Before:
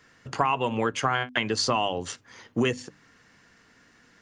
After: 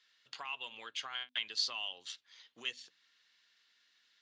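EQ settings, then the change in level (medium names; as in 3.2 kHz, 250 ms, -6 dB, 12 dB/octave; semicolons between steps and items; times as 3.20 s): band-pass filter 3.7 kHz, Q 3.6; 0.0 dB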